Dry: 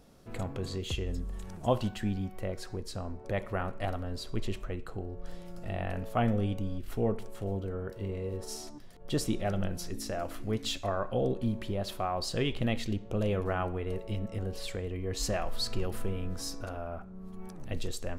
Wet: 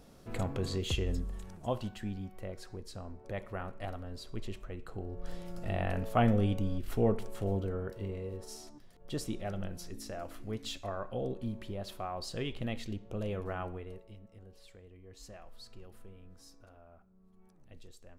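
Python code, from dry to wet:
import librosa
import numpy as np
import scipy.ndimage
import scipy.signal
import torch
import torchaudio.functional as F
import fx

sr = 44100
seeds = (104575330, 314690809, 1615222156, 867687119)

y = fx.gain(x, sr, db=fx.line((1.14, 1.5), (1.6, -6.5), (4.69, -6.5), (5.31, 1.5), (7.6, 1.5), (8.52, -6.5), (13.73, -6.5), (14.2, -19.0)))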